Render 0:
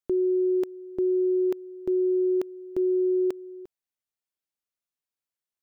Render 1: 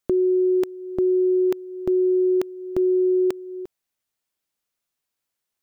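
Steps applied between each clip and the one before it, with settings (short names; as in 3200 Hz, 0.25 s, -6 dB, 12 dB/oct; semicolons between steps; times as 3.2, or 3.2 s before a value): dynamic EQ 430 Hz, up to -5 dB, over -38 dBFS, Q 0.79; gain +9 dB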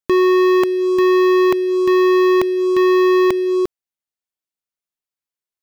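sample leveller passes 5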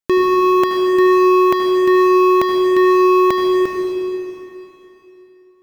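reverb RT60 3.1 s, pre-delay 67 ms, DRR 1 dB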